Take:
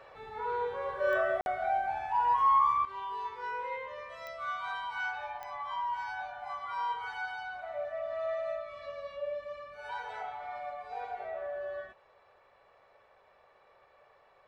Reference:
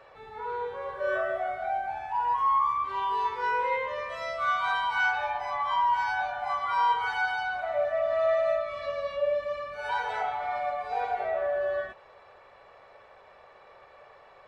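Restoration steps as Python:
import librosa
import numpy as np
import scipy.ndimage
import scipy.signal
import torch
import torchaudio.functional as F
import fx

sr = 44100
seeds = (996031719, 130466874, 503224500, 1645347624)

y = fx.fix_declick_ar(x, sr, threshold=10.0)
y = fx.fix_interpolate(y, sr, at_s=(1.41,), length_ms=51.0)
y = fx.gain(y, sr, db=fx.steps((0.0, 0.0), (2.85, 9.5)))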